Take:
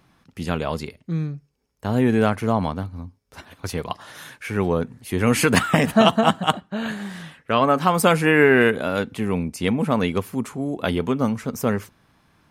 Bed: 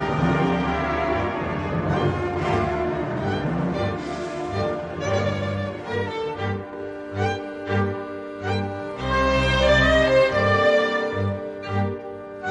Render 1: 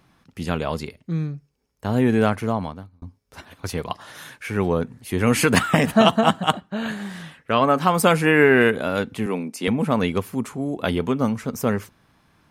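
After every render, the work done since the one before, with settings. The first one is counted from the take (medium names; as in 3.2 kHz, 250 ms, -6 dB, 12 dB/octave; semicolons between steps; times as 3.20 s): 2.34–3.02 s: fade out; 9.26–9.68 s: high-pass 210 Hz 24 dB/octave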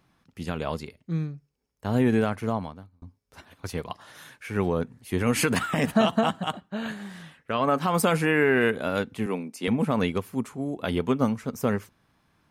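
peak limiter -11 dBFS, peak gain reduction 9.5 dB; upward expansion 1.5:1, over -30 dBFS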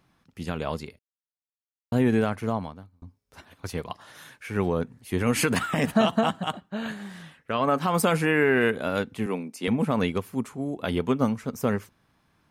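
0.99–1.92 s: mute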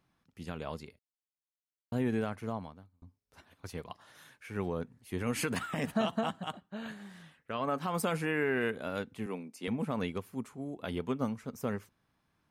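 trim -9.5 dB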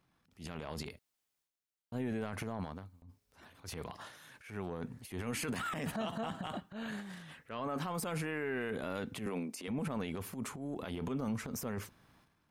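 transient shaper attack -8 dB, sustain +11 dB; peak limiter -29 dBFS, peak gain reduction 11.5 dB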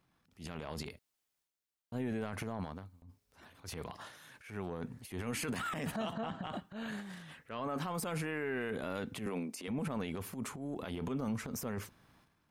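6.13–6.53 s: distance through air 120 m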